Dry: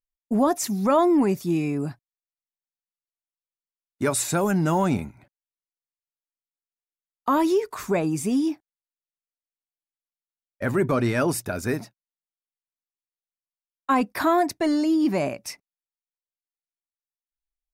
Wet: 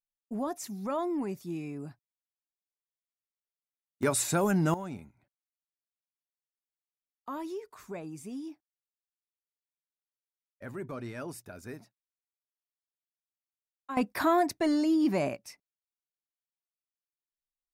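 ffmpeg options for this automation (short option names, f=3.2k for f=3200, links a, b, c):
-af "asetnsamples=n=441:p=0,asendcmd='4.03 volume volume -4dB;4.74 volume volume -17dB;13.97 volume volume -4.5dB;15.36 volume volume -12.5dB',volume=-13dB"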